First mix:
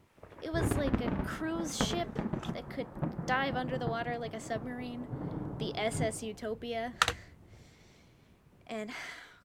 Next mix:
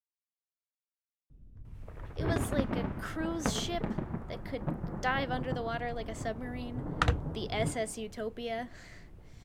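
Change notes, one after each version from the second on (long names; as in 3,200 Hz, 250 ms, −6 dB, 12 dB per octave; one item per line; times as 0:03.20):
speech: entry +1.75 s
first sound: entry +1.65 s
second sound: add spectral tilt −4 dB per octave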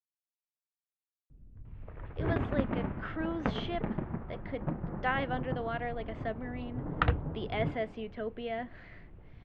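master: add low-pass filter 3,000 Hz 24 dB per octave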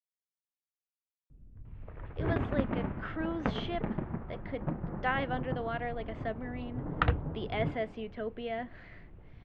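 nothing changed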